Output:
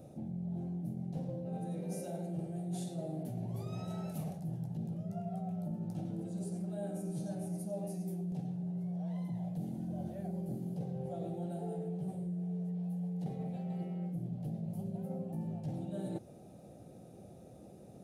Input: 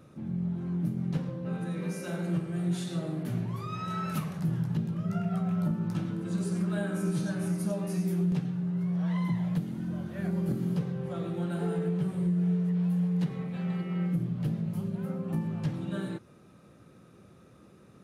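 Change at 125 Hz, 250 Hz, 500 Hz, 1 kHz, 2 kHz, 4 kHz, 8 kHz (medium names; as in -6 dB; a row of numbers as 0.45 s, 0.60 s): -8.5 dB, -8.5 dB, -5.5 dB, -7.0 dB, under -15 dB, under -10 dB, -6.5 dB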